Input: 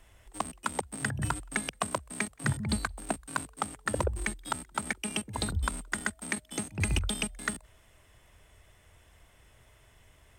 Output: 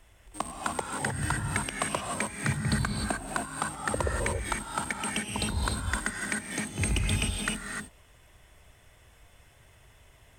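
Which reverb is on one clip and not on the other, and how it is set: gated-style reverb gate 330 ms rising, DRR 0.5 dB

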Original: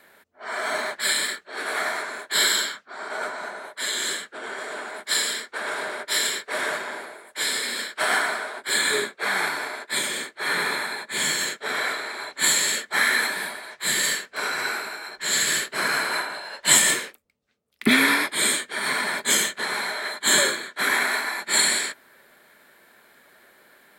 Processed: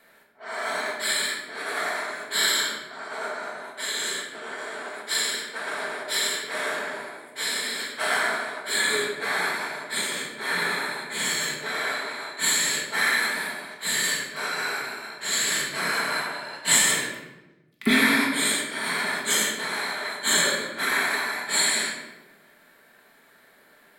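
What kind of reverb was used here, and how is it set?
simulated room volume 480 m³, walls mixed, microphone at 1.6 m; trim -5 dB

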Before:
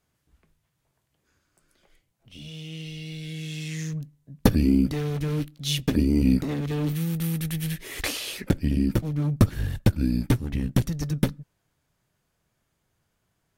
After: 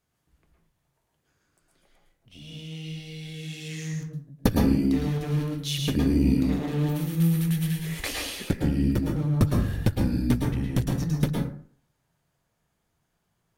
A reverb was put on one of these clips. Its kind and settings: plate-style reverb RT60 0.52 s, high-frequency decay 0.5×, pre-delay 100 ms, DRR -0.5 dB; trim -3.5 dB

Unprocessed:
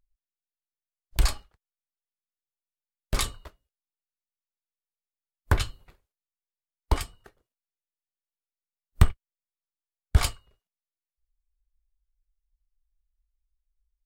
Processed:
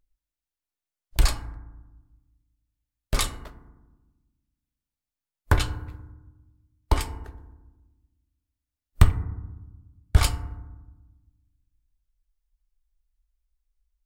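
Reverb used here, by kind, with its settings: FDN reverb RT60 1.1 s, low-frequency decay 1.6×, high-frequency decay 0.3×, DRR 9.5 dB; trim +2 dB

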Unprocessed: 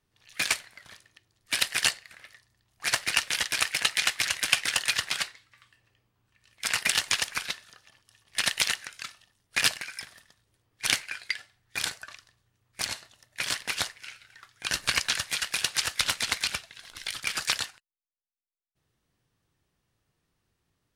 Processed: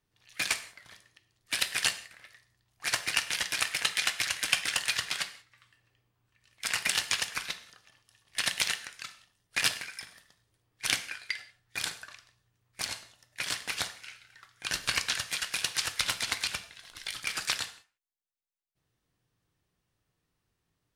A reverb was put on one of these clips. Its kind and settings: gated-style reverb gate 210 ms falling, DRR 10 dB; trim -3.5 dB

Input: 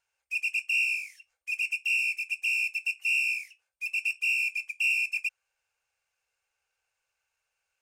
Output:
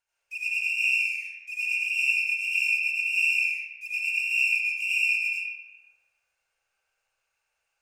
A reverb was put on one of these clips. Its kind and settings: algorithmic reverb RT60 1.5 s, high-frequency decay 0.5×, pre-delay 50 ms, DRR -9 dB; trim -5.5 dB

